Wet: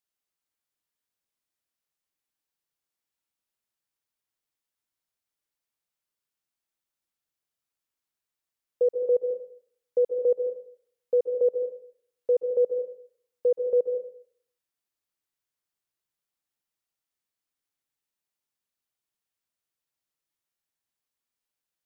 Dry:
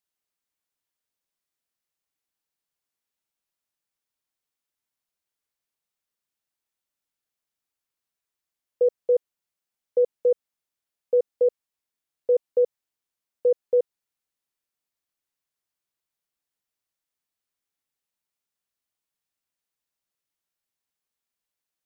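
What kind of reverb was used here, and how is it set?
plate-style reverb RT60 0.57 s, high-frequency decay 0.95×, pre-delay 120 ms, DRR 6.5 dB; trim -2.5 dB

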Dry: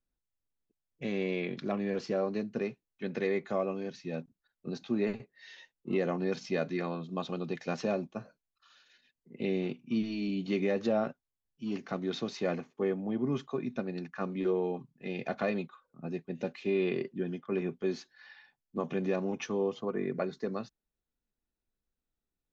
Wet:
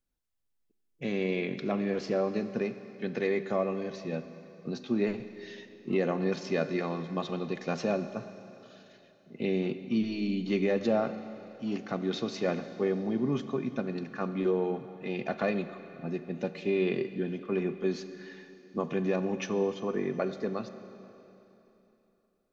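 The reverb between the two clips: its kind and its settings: Schroeder reverb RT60 3.2 s, combs from 32 ms, DRR 10.5 dB; trim +2 dB

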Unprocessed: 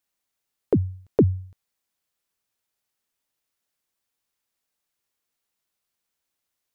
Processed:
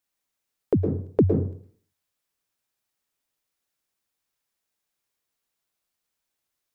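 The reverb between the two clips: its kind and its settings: plate-style reverb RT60 0.51 s, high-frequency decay 0.6×, pre-delay 100 ms, DRR 4.5 dB; trim -1.5 dB

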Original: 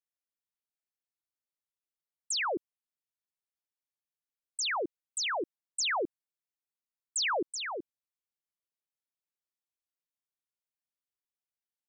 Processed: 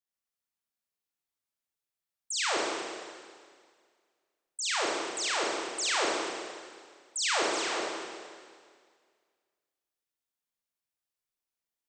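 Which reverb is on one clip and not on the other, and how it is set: Schroeder reverb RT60 1.9 s, combs from 27 ms, DRR -5 dB; trim -3 dB

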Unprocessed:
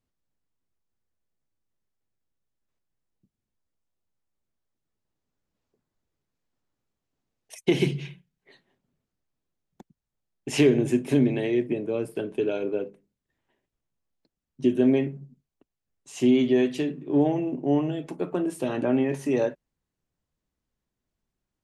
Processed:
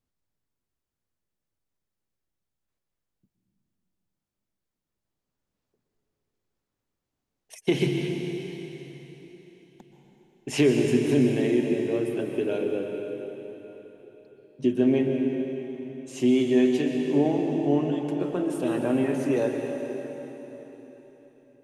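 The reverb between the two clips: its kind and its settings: plate-style reverb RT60 4 s, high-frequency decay 0.95×, pre-delay 110 ms, DRR 2.5 dB; trim -1.5 dB

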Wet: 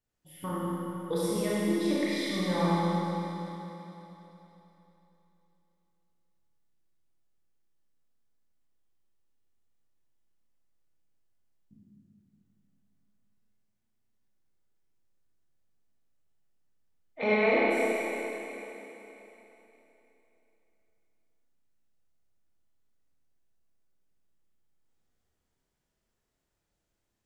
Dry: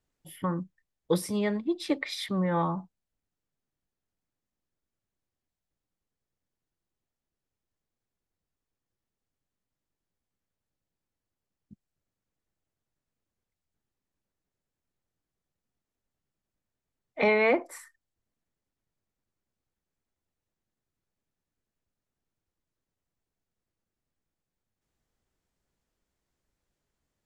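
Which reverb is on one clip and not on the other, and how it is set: Schroeder reverb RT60 3.4 s, combs from 26 ms, DRR -8.5 dB; trim -8 dB

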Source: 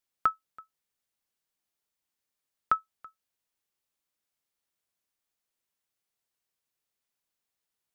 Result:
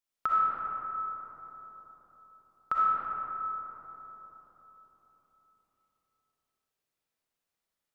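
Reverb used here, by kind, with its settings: algorithmic reverb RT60 4.5 s, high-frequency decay 0.3×, pre-delay 20 ms, DRR -7 dB; trim -6 dB

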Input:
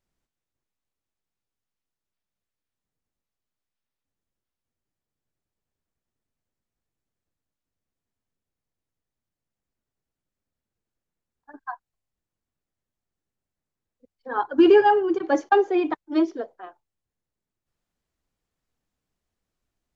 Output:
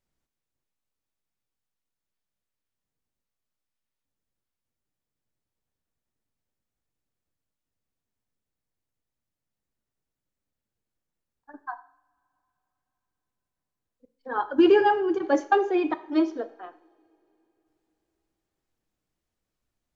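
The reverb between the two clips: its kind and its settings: two-slope reverb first 0.58 s, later 3.9 s, from -27 dB, DRR 11.5 dB; trim -1.5 dB

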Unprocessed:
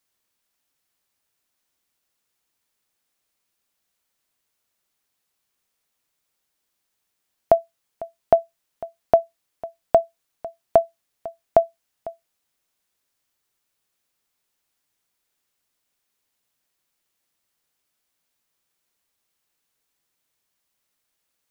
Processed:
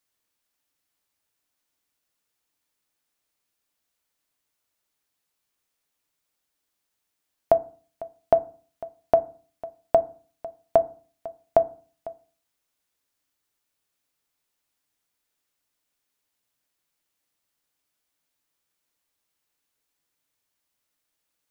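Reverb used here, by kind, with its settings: FDN reverb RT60 0.41 s, low-frequency decay 1.3×, high-frequency decay 0.35×, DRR 11.5 dB; trim -3 dB

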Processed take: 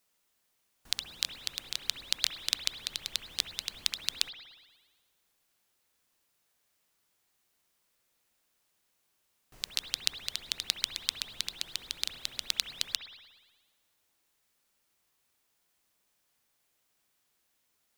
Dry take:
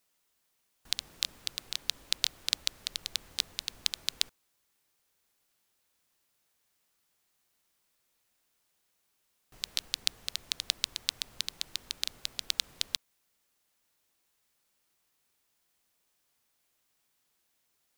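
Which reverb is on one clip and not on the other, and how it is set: spring tank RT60 1.3 s, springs 59 ms, chirp 50 ms, DRR 7 dB

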